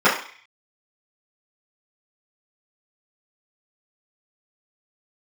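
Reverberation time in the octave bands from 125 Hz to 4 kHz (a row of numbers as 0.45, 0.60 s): 0.30, 0.40, 0.40, 0.50, 0.65, 0.55 s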